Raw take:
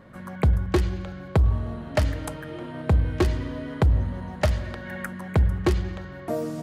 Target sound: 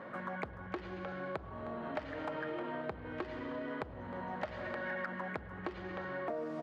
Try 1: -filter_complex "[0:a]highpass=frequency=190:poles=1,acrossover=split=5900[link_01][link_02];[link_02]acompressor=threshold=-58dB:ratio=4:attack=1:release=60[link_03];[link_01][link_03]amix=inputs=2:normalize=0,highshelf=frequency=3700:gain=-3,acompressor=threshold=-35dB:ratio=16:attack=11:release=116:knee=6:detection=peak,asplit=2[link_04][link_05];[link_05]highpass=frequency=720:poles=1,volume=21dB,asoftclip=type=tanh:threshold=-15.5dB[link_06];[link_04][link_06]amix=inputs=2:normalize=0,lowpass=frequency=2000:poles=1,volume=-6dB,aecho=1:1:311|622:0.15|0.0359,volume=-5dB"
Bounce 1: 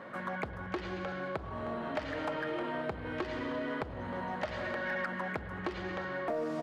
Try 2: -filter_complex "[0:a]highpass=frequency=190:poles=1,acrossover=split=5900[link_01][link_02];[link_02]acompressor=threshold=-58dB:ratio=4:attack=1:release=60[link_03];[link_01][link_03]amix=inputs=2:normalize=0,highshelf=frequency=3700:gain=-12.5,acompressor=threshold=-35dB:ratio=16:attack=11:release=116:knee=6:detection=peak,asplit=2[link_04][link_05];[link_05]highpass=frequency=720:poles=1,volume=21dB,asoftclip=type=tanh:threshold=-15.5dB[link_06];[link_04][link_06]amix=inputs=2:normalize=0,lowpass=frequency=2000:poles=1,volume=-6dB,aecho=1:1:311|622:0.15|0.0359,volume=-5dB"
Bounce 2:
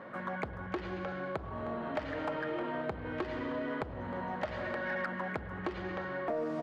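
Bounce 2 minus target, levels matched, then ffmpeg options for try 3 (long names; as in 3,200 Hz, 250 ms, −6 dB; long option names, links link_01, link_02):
downward compressor: peak gain reduction −5.5 dB
-filter_complex "[0:a]highpass=frequency=190:poles=1,acrossover=split=5900[link_01][link_02];[link_02]acompressor=threshold=-58dB:ratio=4:attack=1:release=60[link_03];[link_01][link_03]amix=inputs=2:normalize=0,highshelf=frequency=3700:gain=-12.5,acompressor=threshold=-41dB:ratio=16:attack=11:release=116:knee=6:detection=peak,asplit=2[link_04][link_05];[link_05]highpass=frequency=720:poles=1,volume=21dB,asoftclip=type=tanh:threshold=-15.5dB[link_06];[link_04][link_06]amix=inputs=2:normalize=0,lowpass=frequency=2000:poles=1,volume=-6dB,aecho=1:1:311|622:0.15|0.0359,volume=-5dB"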